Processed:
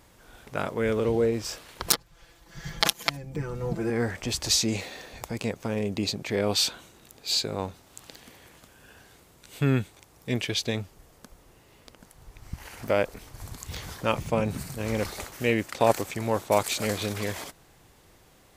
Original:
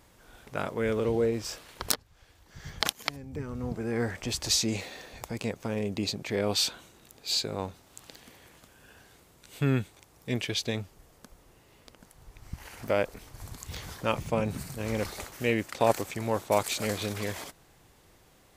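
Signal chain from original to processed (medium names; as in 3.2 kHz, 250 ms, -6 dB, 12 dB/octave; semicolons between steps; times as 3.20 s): 1.86–3.90 s: comb 5.9 ms, depth 95%; trim +2.5 dB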